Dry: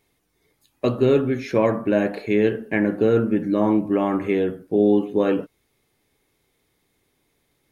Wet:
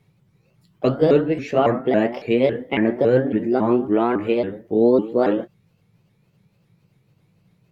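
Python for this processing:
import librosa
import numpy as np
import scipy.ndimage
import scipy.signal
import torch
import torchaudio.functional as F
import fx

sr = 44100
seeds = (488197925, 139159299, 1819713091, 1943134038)

y = fx.pitch_ramps(x, sr, semitones=4.5, every_ms=277)
y = fx.dmg_noise_band(y, sr, seeds[0], low_hz=97.0, high_hz=190.0, level_db=-63.0)
y = fx.high_shelf(y, sr, hz=5400.0, db=-11.5)
y = y * 10.0 ** (2.5 / 20.0)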